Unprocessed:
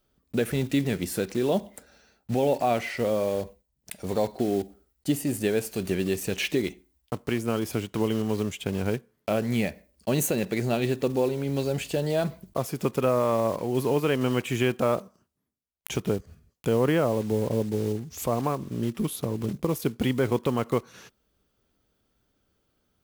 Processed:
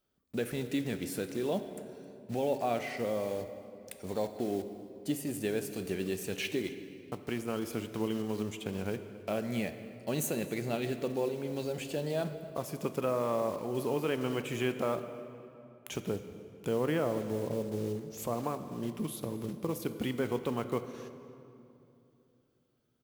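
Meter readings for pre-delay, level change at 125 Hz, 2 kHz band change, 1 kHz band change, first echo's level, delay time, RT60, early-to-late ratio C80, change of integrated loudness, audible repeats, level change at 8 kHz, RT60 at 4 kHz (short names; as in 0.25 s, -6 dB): 6 ms, -9.5 dB, -7.0 dB, -7.0 dB, -23.0 dB, 0.266 s, 2.8 s, 11.0 dB, -7.5 dB, 1, -7.0 dB, 1.8 s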